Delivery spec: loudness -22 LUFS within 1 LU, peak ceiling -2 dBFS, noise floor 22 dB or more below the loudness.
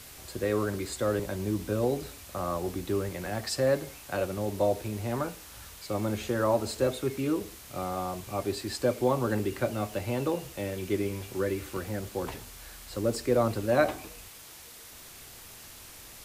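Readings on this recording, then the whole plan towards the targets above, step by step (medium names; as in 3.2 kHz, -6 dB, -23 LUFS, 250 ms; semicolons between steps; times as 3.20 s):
noise floor -48 dBFS; noise floor target -53 dBFS; loudness -30.5 LUFS; peak level -11.5 dBFS; loudness target -22.0 LUFS
-> noise reduction 6 dB, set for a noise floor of -48 dBFS; trim +8.5 dB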